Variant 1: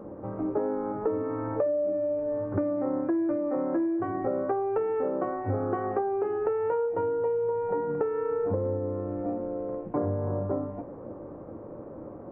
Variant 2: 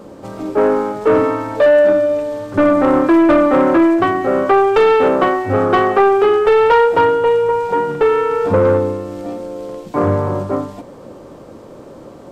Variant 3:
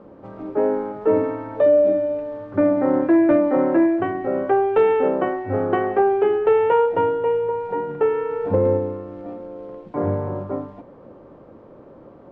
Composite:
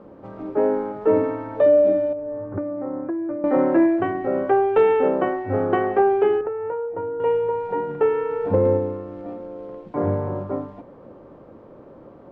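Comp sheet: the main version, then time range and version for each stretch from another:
3
2.13–3.44 from 1
6.41–7.2 from 1
not used: 2

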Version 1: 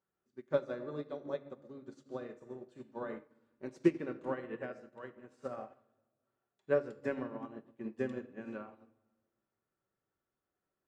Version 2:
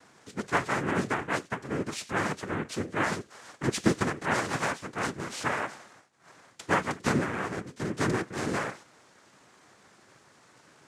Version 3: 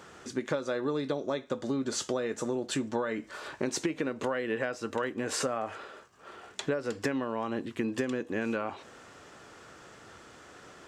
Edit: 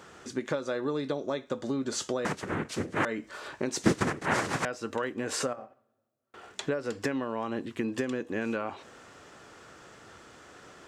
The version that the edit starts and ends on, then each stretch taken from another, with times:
3
2.25–3.05 from 2
3.83–4.65 from 2
5.53–6.34 from 1

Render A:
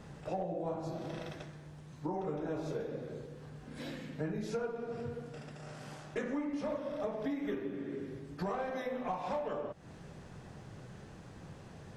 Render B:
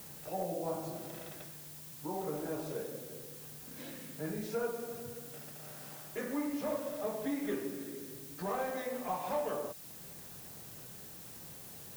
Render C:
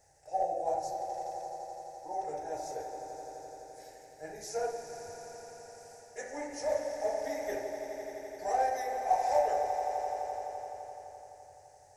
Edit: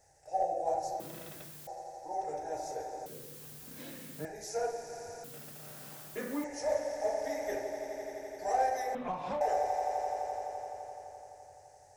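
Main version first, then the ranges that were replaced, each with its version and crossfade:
C
1–1.67 from B
3.06–4.25 from B
5.24–6.44 from B
8.95–9.41 from A

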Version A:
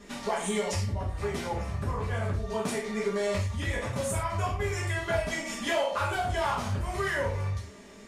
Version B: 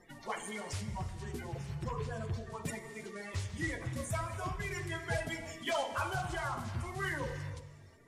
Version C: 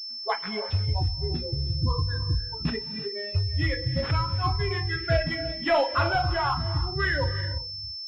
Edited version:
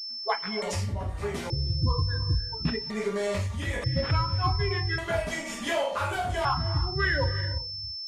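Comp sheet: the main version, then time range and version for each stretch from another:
C
0.62–1.5 from A
2.9–3.84 from A
4.98–6.45 from A
not used: B

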